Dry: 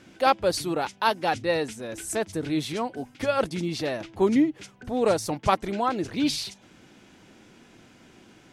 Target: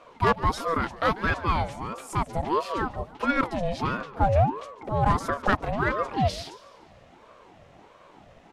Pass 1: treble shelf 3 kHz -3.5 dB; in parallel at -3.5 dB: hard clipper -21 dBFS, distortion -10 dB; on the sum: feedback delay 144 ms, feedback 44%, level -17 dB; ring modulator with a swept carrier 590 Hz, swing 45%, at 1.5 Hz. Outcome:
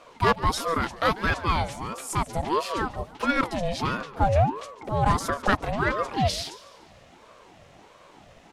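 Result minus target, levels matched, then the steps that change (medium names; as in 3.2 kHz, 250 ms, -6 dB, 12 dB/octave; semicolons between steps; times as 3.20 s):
8 kHz band +7.5 dB
change: treble shelf 3 kHz -13 dB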